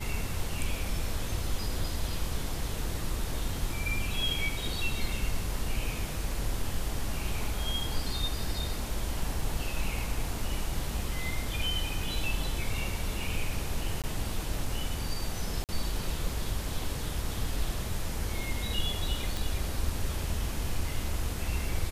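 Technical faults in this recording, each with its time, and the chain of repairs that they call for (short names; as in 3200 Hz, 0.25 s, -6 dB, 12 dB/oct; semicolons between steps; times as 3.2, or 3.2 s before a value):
14.02–14.04 gap 17 ms
15.64–15.69 gap 48 ms
19.37 pop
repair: de-click; interpolate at 14.02, 17 ms; interpolate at 15.64, 48 ms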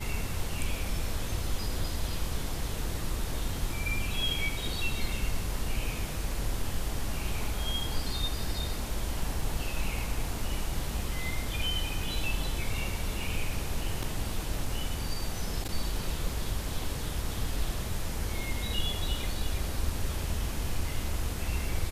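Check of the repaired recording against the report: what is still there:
none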